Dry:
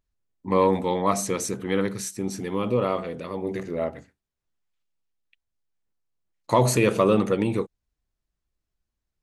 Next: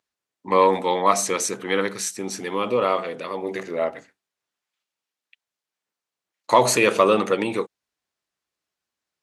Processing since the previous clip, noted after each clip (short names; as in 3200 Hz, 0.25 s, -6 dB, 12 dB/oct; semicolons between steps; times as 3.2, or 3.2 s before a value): weighting filter A; gain +6 dB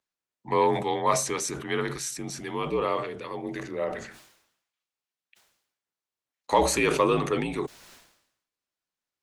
frequency shift -57 Hz; sustainer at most 73 dB/s; gain -6 dB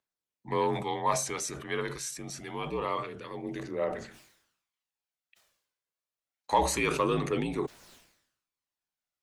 phaser 0.26 Hz, delay 2 ms, feedback 34%; gain -4.5 dB